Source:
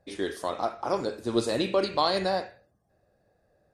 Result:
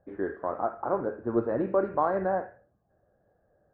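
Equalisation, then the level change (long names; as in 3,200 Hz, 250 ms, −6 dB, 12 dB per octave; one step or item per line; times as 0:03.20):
Chebyshev low-pass filter 1,600 Hz, order 4
0.0 dB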